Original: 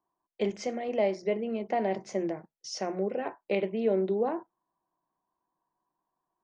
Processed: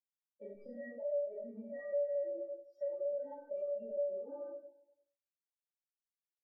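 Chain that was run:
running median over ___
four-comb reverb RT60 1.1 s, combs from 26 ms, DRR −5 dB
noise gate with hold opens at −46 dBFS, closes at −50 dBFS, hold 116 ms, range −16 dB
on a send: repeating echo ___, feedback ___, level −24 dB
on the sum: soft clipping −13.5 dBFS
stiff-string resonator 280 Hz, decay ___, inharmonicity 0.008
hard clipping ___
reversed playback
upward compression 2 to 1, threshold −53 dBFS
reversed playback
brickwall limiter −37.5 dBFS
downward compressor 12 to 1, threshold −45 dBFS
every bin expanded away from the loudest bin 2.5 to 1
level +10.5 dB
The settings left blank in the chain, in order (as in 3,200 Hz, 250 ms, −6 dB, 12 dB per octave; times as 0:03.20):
15 samples, 87 ms, 57%, 0.23 s, −29 dBFS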